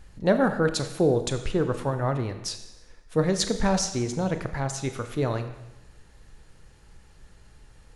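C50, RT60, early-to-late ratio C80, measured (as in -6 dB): 10.5 dB, 1.0 s, 12.0 dB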